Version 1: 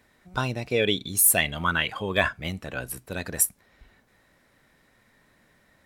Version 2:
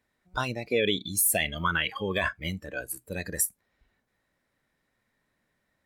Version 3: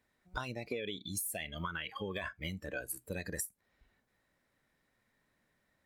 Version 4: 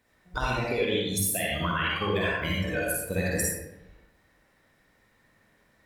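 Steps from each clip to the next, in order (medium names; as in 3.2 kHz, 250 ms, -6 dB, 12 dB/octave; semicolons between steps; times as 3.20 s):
spectral noise reduction 14 dB; peak limiter -13.5 dBFS, peak gain reduction 8 dB
compression 16:1, threshold -34 dBFS, peak gain reduction 15 dB; trim -1 dB
reverberation RT60 1.0 s, pre-delay 44 ms, DRR -5 dB; trim +6.5 dB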